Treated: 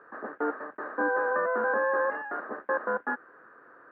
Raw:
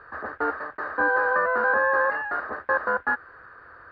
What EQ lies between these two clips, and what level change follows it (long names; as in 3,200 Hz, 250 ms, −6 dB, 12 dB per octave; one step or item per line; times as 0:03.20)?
high-pass filter 220 Hz 24 dB per octave
high-frequency loss of the air 410 metres
low-shelf EQ 420 Hz +12 dB
−5.5 dB